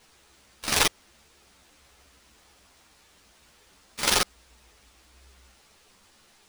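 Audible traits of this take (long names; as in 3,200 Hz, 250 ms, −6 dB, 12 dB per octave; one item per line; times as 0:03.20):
aliases and images of a low sample rate 15,000 Hz, jitter 0%
a shimmering, thickened sound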